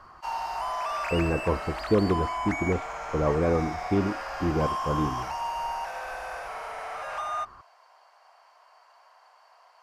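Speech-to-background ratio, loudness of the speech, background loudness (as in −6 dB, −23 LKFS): 5.0 dB, −28.0 LKFS, −33.0 LKFS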